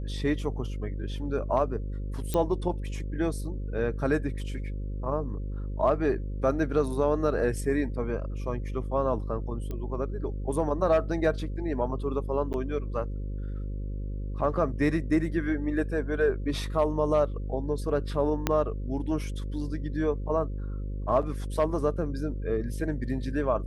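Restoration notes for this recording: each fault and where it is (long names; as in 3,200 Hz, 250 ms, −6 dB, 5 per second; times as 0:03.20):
mains buzz 50 Hz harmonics 11 −33 dBFS
0:02.34: click −15 dBFS
0:09.71: click −23 dBFS
0:12.53–0:12.54: drop-out 9.5 ms
0:18.47: click −9 dBFS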